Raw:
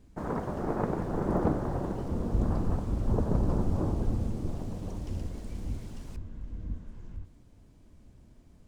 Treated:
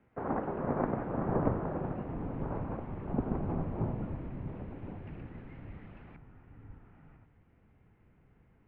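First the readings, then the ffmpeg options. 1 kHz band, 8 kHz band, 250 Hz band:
-1.0 dB, no reading, -3.5 dB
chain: -af "asubboost=boost=7:cutoff=240,highpass=f=380:t=q:w=0.5412,highpass=f=380:t=q:w=1.307,lowpass=f=2600:t=q:w=0.5176,lowpass=f=2600:t=q:w=0.7071,lowpass=f=2600:t=q:w=1.932,afreqshift=-200,volume=1.5"

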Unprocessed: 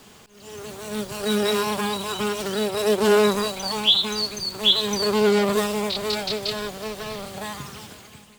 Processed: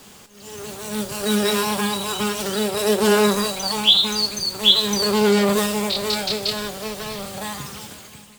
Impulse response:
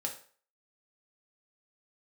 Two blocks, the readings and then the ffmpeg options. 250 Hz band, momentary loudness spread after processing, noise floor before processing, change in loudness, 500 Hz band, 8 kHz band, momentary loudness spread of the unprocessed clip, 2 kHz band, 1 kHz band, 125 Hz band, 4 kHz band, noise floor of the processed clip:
+3.5 dB, 16 LU, -49 dBFS, +2.5 dB, +0.5 dB, +6.0 dB, 16 LU, +2.5 dB, +2.0 dB, +3.5 dB, +3.5 dB, -45 dBFS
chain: -filter_complex "[0:a]asplit=2[s0][s1];[1:a]atrim=start_sample=2205,highshelf=f=4000:g=11[s2];[s1][s2]afir=irnorm=-1:irlink=0,volume=0.531[s3];[s0][s3]amix=inputs=2:normalize=0,volume=0.841"

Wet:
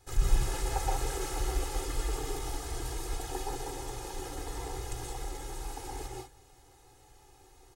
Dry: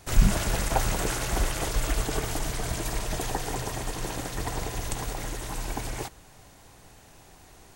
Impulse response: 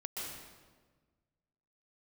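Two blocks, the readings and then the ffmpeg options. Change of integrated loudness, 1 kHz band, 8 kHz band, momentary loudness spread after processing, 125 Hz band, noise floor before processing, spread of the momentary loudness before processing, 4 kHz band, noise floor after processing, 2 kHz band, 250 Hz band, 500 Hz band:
-6.5 dB, -5.0 dB, -7.0 dB, 9 LU, -7.0 dB, -53 dBFS, 7 LU, -7.5 dB, -59 dBFS, -10.0 dB, -9.5 dB, -5.5 dB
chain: -filter_complex "[0:a]equalizer=f=2400:w=1.5:g=-4.5,aecho=1:1:2.4:0.97[s0];[1:a]atrim=start_sample=2205,afade=t=out:st=0.25:d=0.01,atrim=end_sample=11466[s1];[s0][s1]afir=irnorm=-1:irlink=0,volume=0.376"

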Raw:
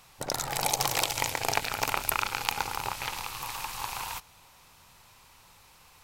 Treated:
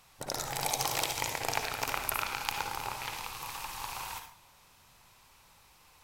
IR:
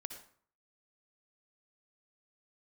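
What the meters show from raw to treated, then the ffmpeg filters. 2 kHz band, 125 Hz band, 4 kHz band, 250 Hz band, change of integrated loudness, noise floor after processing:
-3.5 dB, -4.0 dB, -4.0 dB, -3.5 dB, -4.0 dB, -61 dBFS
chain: -filter_complex "[1:a]atrim=start_sample=2205,asetrate=48510,aresample=44100[s0];[0:a][s0]afir=irnorm=-1:irlink=0"

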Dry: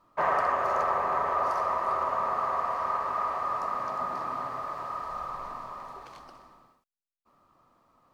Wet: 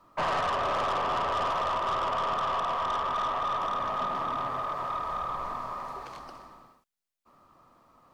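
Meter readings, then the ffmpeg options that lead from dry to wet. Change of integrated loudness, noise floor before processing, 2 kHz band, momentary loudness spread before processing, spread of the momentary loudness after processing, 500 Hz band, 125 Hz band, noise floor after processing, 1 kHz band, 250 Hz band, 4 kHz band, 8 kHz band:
-0.5 dB, -78 dBFS, +0.5 dB, 13 LU, 10 LU, -0.5 dB, +5.5 dB, -74 dBFS, -0.5 dB, +3.5 dB, +13.0 dB, no reading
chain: -filter_complex "[0:a]acrossover=split=200|1900[s0][s1][s2];[s1]aeval=exprs='(tanh(35.5*val(0)+0.15)-tanh(0.15))/35.5':c=same[s3];[s2]acompressor=threshold=0.002:ratio=6[s4];[s0][s3][s4]amix=inputs=3:normalize=0,volume=1.78"

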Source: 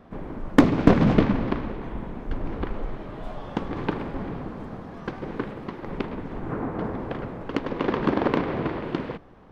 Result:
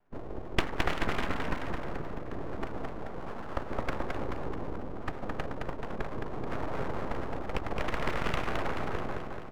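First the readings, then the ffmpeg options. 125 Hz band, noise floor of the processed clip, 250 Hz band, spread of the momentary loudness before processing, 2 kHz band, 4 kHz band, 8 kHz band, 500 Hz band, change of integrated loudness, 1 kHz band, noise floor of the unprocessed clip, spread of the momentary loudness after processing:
-10.0 dB, -39 dBFS, -14.5 dB, 17 LU, -2.0 dB, -1.0 dB, no reading, -8.0 dB, -9.5 dB, -4.5 dB, -41 dBFS, 8 LU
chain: -filter_complex "[0:a]highpass=f=190:t=q:w=0.5412,highpass=f=190:t=q:w=1.307,lowpass=f=2300:t=q:w=0.5176,lowpass=f=2300:t=q:w=0.7071,lowpass=f=2300:t=q:w=1.932,afreqshift=-110,afftdn=nr=21:nf=-35,acrossover=split=1100[s0][s1];[s0]acompressor=threshold=0.0316:ratio=6[s2];[s2][s1]amix=inputs=2:normalize=0,bandreject=f=60:t=h:w=6,bandreject=f=120:t=h:w=6,bandreject=f=180:t=h:w=6,bandreject=f=240:t=h:w=6,bandreject=f=300:t=h:w=6,bandreject=f=360:t=h:w=6,bandreject=f=420:t=h:w=6,aecho=1:1:216|432|648|864|1080|1296|1512|1728:0.668|0.388|0.225|0.13|0.0756|0.0439|0.0254|0.0148,aeval=exprs='abs(val(0))':c=same,volume=1.26"

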